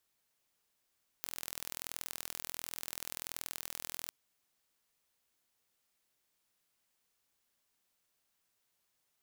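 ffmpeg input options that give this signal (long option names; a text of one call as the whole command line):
ffmpeg -f lavfi -i "aevalsrc='0.266*eq(mod(n,1065),0)*(0.5+0.5*eq(mod(n,2130),0))':duration=2.85:sample_rate=44100" out.wav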